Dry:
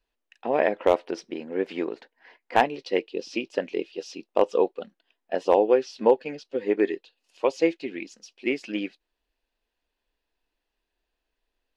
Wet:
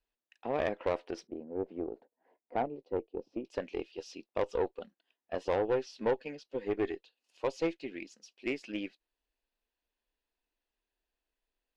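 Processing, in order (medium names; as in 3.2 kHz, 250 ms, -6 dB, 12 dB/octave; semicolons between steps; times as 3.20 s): 1.27–3.45 s: FFT filter 680 Hz 0 dB, 1.8 kHz -20 dB, 7 kHz -29 dB; valve stage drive 16 dB, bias 0.4; trim -6.5 dB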